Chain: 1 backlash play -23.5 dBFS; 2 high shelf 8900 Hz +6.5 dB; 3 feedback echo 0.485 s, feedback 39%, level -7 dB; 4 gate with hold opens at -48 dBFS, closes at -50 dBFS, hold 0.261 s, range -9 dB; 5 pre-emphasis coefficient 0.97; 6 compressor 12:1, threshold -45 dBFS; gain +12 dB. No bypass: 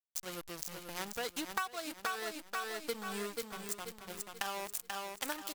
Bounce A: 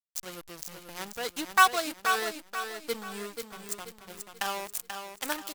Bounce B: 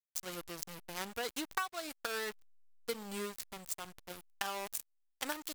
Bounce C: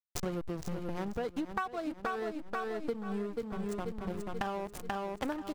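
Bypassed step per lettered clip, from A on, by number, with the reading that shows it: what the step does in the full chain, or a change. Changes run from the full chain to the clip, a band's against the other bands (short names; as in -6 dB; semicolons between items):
6, mean gain reduction 3.0 dB; 3, momentary loudness spread change +3 LU; 5, 8 kHz band -13.0 dB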